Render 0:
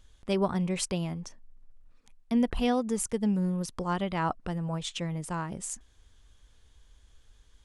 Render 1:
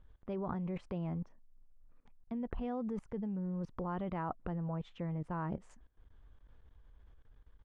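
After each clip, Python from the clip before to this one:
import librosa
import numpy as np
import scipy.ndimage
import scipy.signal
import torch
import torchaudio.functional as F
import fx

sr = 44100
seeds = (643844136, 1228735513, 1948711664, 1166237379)

y = scipy.signal.sosfilt(scipy.signal.butter(2, 1400.0, 'lowpass', fs=sr, output='sos'), x)
y = fx.level_steps(y, sr, step_db=20)
y = y * librosa.db_to_amplitude(3.0)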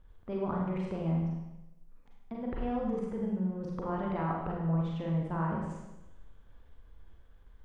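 y = fx.hum_notches(x, sr, base_hz=60, count=4)
y = fx.rev_schroeder(y, sr, rt60_s=1.0, comb_ms=33, drr_db=-2.5)
y = y * librosa.db_to_amplitude(1.5)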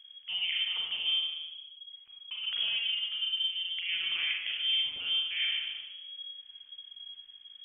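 y = x + 10.0 ** (-12.0 / 20.0) * np.pad(x, (int(154 * sr / 1000.0), 0))[:len(x)]
y = fx.freq_invert(y, sr, carrier_hz=3300)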